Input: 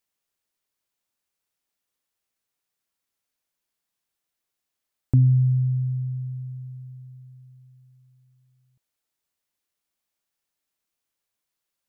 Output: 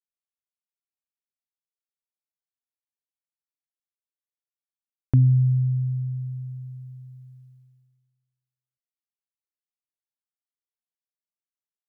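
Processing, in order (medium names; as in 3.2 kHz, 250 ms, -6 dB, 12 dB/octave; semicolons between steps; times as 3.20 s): expander -47 dBFS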